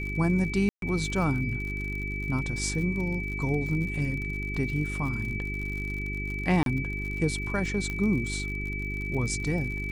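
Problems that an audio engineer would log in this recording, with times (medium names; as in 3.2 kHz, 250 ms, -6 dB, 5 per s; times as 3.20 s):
crackle 58 per s -35 dBFS
hum 50 Hz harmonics 8 -34 dBFS
whine 2.3 kHz -34 dBFS
0.69–0.82 s: dropout 132 ms
6.63–6.66 s: dropout 32 ms
7.90 s: pop -20 dBFS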